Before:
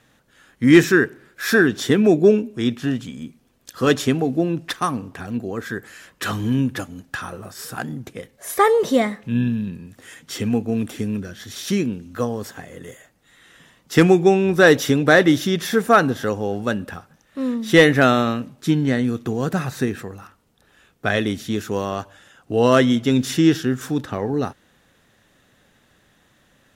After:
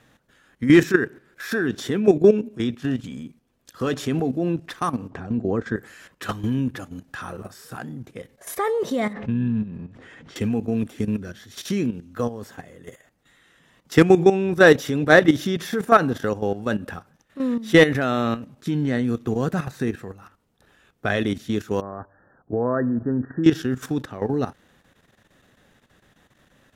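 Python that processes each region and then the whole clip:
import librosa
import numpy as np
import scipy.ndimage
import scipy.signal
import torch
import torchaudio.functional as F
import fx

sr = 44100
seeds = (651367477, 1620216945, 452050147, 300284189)

y = fx.chain(x, sr, fx.lowpass(hz=8000.0, slope=24),
    fx.tilt_shelf(db=5.5, hz=1400.0), at=(5.1, 5.76))
y = fx.chain(y, sr, fx.law_mismatch(coded='mu'),
    fx.spacing_loss(db_at_10k=25),
    fx.pre_swell(db_per_s=87.0), at=(9.13, 10.36))
y = fx.chain(y, sr, fx.brickwall_lowpass(high_hz=1900.0),
    fx.env_lowpass(base_hz=850.0, full_db=-15.0), at=(21.81, 23.44))
y = fx.high_shelf(y, sr, hz=2600.0, db=-4.0)
y = fx.level_steps(y, sr, step_db=12)
y = y * librosa.db_to_amplitude(2.0)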